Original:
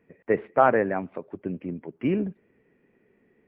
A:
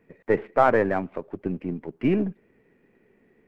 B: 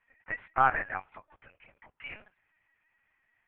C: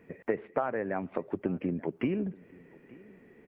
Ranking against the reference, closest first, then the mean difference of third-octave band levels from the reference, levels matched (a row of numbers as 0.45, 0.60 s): A, C, B; 2.0, 4.5, 7.5 dB